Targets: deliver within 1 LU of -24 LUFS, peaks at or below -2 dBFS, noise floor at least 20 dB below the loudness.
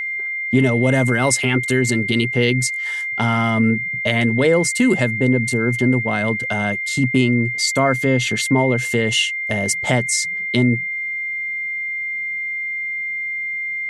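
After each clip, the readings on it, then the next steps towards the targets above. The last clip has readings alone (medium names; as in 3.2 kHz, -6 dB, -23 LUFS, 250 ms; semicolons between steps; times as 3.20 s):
steady tone 2.1 kHz; tone level -22 dBFS; loudness -18.5 LUFS; peak level -3.0 dBFS; loudness target -24.0 LUFS
-> band-stop 2.1 kHz, Q 30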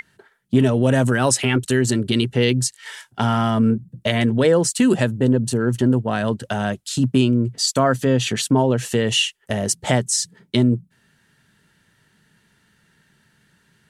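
steady tone not found; loudness -19.5 LUFS; peak level -3.5 dBFS; loudness target -24.0 LUFS
-> trim -4.5 dB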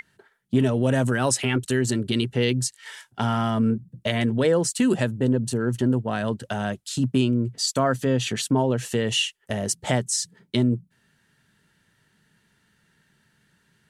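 loudness -24.0 LUFS; peak level -8.0 dBFS; noise floor -67 dBFS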